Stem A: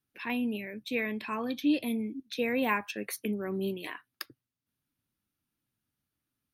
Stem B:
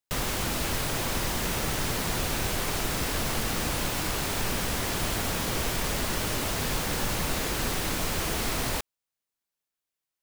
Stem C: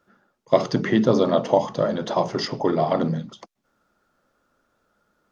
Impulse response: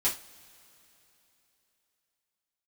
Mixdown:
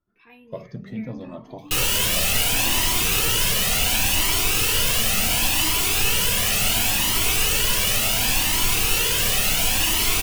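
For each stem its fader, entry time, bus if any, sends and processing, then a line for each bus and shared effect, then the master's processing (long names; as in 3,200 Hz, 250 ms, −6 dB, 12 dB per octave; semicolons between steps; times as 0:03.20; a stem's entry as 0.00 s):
−13.0 dB, 0.00 s, send −8.5 dB, low-pass filter 1,800 Hz 6 dB per octave
0.0 dB, 1.60 s, send −3.5 dB, parametric band 2,800 Hz +11.5 dB 0.37 octaves
−17.0 dB, 0.00 s, send −22.5 dB, spectral tilt −4 dB per octave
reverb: on, pre-delay 3 ms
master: high-shelf EQ 4,300 Hz +11 dB; flanger whose copies keep moving one way rising 0.7 Hz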